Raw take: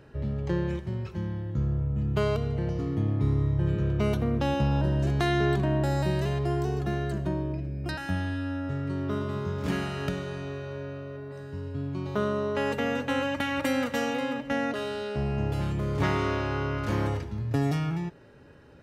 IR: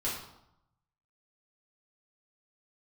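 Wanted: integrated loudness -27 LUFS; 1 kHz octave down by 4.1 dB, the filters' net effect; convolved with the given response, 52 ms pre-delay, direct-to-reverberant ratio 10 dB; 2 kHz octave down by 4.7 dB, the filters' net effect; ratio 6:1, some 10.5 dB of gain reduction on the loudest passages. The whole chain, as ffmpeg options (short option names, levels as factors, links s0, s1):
-filter_complex "[0:a]equalizer=f=1000:t=o:g=-4.5,equalizer=f=2000:t=o:g=-4.5,acompressor=threshold=0.0224:ratio=6,asplit=2[s0][s1];[1:a]atrim=start_sample=2205,adelay=52[s2];[s1][s2]afir=irnorm=-1:irlink=0,volume=0.168[s3];[s0][s3]amix=inputs=2:normalize=0,volume=2.99"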